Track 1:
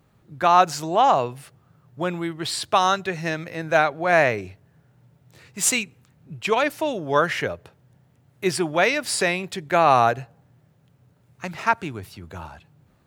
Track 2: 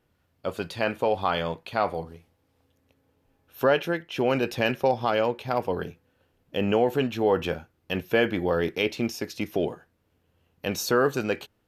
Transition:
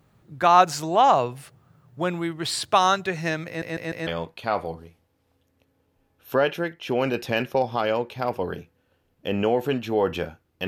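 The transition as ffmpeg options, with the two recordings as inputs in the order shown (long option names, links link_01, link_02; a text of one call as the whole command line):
ffmpeg -i cue0.wav -i cue1.wav -filter_complex "[0:a]apad=whole_dur=10.67,atrim=end=10.67,asplit=4[link_01][link_02][link_03][link_04];[link_01]atrim=end=3.622[link_05];[link_02]atrim=start=3.468:end=3.622[link_06];[link_03]atrim=start=3.468:end=3.622[link_07];[link_04]atrim=start=3.468:end=3.622[link_08];[1:a]atrim=start=1.358:end=7.96[link_09];[link_05][link_06]acrossfade=duration=0.004:curve1=hsin:curve2=hsin[link_10];[link_10][link_07]acrossfade=duration=0.004:curve1=hsin:curve2=hsin[link_11];[link_11][link_08]acrossfade=duration=0.004:curve1=hsin:curve2=hsin[link_12];[link_12][link_09]acrossfade=duration=0.004:curve1=hsin:curve2=hsin" out.wav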